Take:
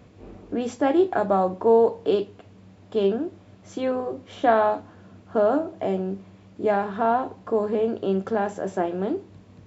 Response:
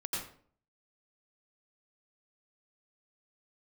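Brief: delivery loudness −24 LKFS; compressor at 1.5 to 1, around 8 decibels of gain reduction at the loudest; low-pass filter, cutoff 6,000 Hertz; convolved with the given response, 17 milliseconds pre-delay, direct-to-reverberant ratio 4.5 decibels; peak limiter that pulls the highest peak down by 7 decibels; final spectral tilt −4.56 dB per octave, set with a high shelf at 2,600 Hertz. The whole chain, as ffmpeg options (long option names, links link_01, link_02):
-filter_complex "[0:a]lowpass=6000,highshelf=frequency=2600:gain=-6.5,acompressor=threshold=-36dB:ratio=1.5,alimiter=limit=-21.5dB:level=0:latency=1,asplit=2[link_01][link_02];[1:a]atrim=start_sample=2205,adelay=17[link_03];[link_02][link_03]afir=irnorm=-1:irlink=0,volume=-7.5dB[link_04];[link_01][link_04]amix=inputs=2:normalize=0,volume=8dB"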